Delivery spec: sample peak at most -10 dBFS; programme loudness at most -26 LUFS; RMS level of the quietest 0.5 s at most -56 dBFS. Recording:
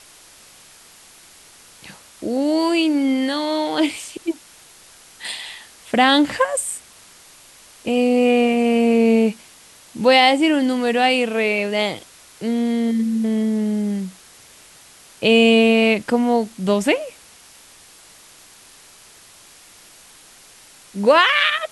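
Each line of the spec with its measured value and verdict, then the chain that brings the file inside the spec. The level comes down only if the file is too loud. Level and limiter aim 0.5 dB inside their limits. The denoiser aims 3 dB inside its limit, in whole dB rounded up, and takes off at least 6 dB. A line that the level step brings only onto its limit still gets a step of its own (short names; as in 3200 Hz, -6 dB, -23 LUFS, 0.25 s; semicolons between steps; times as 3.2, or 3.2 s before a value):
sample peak -3.0 dBFS: fail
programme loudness -18.0 LUFS: fail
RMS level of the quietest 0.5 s -47 dBFS: fail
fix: denoiser 6 dB, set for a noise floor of -47 dBFS; gain -8.5 dB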